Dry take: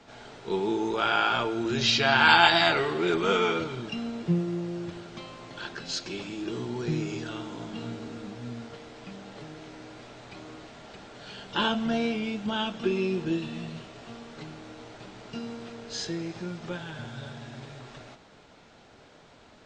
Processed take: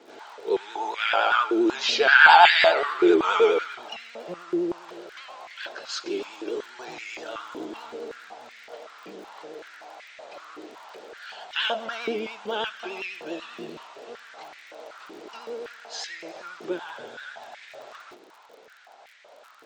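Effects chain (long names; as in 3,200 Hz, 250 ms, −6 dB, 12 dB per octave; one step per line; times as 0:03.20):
surface crackle 34 per second −40 dBFS
pitch vibrato 10 Hz 63 cents
high-pass on a step sequencer 5.3 Hz 360–2,000 Hz
level −1 dB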